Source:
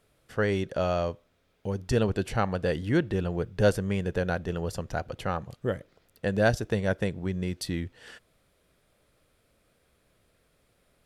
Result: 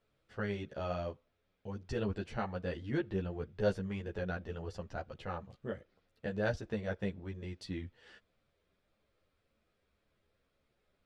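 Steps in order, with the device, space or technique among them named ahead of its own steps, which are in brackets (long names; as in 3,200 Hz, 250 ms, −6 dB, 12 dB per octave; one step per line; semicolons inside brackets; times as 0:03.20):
string-machine ensemble chorus (string-ensemble chorus; low-pass filter 5,000 Hz 12 dB per octave)
level −7 dB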